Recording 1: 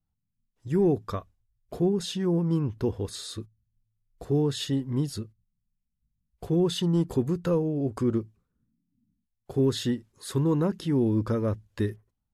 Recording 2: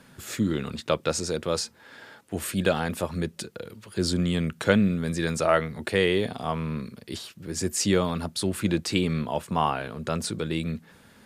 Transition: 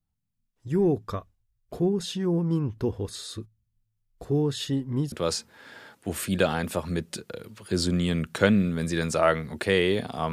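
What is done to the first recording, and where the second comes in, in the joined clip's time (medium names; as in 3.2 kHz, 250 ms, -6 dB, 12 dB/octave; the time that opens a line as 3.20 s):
recording 1
5.12 s: go over to recording 2 from 1.38 s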